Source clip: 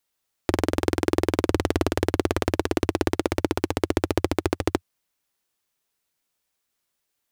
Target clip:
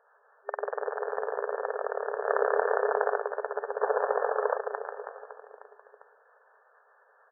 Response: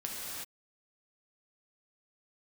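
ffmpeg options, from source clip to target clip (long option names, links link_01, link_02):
-filter_complex "[0:a]acompressor=mode=upward:threshold=-23dB:ratio=2.5,acrossover=split=610[link_01][link_02];[link_01]aeval=exprs='val(0)*(1-0.7/2+0.7/2*cos(2*PI*4.5*n/s))':channel_layout=same[link_03];[link_02]aeval=exprs='val(0)*(1-0.7/2-0.7/2*cos(2*PI*4.5*n/s))':channel_layout=same[link_04];[link_03][link_04]amix=inputs=2:normalize=0,aecho=1:1:140|322|558.6|866.2|1266:0.631|0.398|0.251|0.158|0.1,asplit=2[link_05][link_06];[1:a]atrim=start_sample=2205,adelay=113[link_07];[link_06][link_07]afir=irnorm=-1:irlink=0,volume=-13dB[link_08];[link_05][link_08]amix=inputs=2:normalize=0,asplit=3[link_09][link_10][link_11];[link_09]afade=type=out:start_time=2.25:duration=0.02[link_12];[link_10]acontrast=84,afade=type=in:start_time=2.25:duration=0.02,afade=type=out:start_time=3.17:duration=0.02[link_13];[link_11]afade=type=in:start_time=3.17:duration=0.02[link_14];[link_12][link_13][link_14]amix=inputs=3:normalize=0,asettb=1/sr,asplit=3[link_15][link_16][link_17];[link_15]atrim=end=3.814[link_18];[link_16]atrim=start=3.81:end=4.58,asetpts=PTS-STARTPTS,afade=type=in:duration=0.004:curve=qsin,afade=type=out:start_time=0.766:duration=0.004:curve=qsin,asplit=2[link_19][link_20];[link_20]highpass=frequency=720:poles=1,volume=20dB,asoftclip=type=tanh:threshold=-6.5dB[link_21];[link_19][link_21]amix=inputs=2:normalize=0,lowpass=frequency=1300:poles=1,volume=-6dB[link_22];[link_17]atrim=start=4.576[link_23];[link_18][link_22]acrossfade=duration=0.004:curve1=hsin:curve2=qsin[link_24];[link_24][link_23]acrossfade=duration=0.004:curve1=qsin:curve2=hsin,afftfilt=real='re*between(b*sr/4096,400,1800)':imag='im*between(b*sr/4096,400,1800)':win_size=4096:overlap=0.75,volume=-2dB"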